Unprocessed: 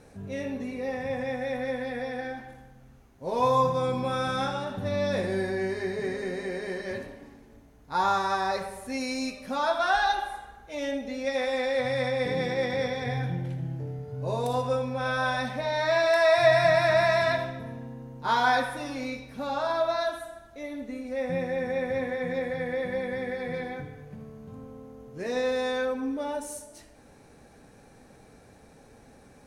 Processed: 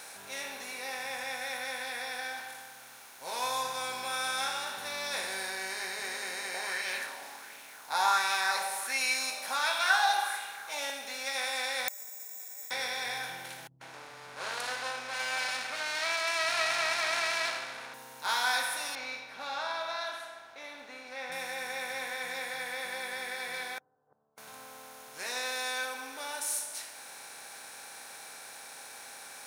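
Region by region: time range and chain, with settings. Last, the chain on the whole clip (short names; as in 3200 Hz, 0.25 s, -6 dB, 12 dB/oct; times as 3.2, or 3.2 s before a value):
6.54–10.9 HPF 120 Hz + LFO bell 1.4 Hz 700–2700 Hz +13 dB
11.88–12.71 LPF 1400 Hz 6 dB/oct + careless resampling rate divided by 6×, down filtered, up zero stuff + flipped gate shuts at -19 dBFS, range -36 dB
13.67–17.94 minimum comb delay 0.44 ms + air absorption 96 m + bands offset in time lows, highs 0.14 s, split 160 Hz
18.95–21.32 air absorption 230 m + mismatched tape noise reduction decoder only
23.78–24.38 flipped gate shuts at -37 dBFS, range -32 dB + Gaussian blur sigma 12 samples
whole clip: per-bin compression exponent 0.6; differentiator; gain +4.5 dB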